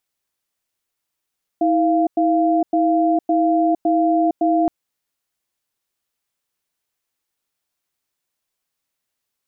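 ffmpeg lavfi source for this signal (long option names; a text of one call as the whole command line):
ffmpeg -f lavfi -i "aevalsrc='0.15*(sin(2*PI*322*t)+sin(2*PI*693*t))*clip(min(mod(t,0.56),0.46-mod(t,0.56))/0.005,0,1)':duration=3.07:sample_rate=44100" out.wav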